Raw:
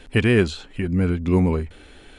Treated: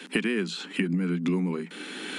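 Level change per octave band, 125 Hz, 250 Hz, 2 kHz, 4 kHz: -11.0, -5.5, -4.5, -1.0 dB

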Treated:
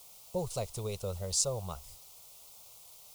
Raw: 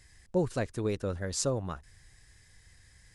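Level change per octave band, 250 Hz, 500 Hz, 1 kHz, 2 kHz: -10.5, -4.5, -3.0, -12.0 dB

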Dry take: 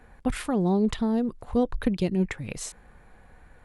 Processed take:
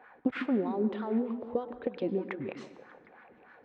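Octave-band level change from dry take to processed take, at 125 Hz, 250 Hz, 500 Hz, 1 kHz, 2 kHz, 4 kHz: -13.5, -6.5, -4.0, -5.5, -4.0, -11.5 dB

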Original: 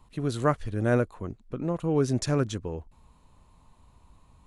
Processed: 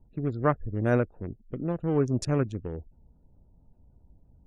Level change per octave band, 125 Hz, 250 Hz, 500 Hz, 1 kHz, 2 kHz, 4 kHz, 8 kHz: 0.0, -0.5, -1.0, -0.5, -1.0, -7.0, -6.0 dB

